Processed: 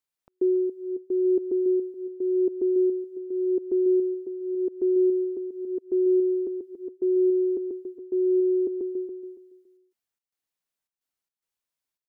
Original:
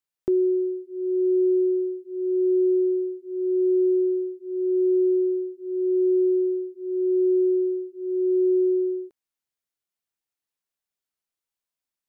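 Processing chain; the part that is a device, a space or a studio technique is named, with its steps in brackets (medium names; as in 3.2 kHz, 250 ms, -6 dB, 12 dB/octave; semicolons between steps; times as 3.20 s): trance gate with a delay (trance gate "xx.xxxx." 109 bpm -60 dB; feedback delay 281 ms, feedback 24%, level -9 dB)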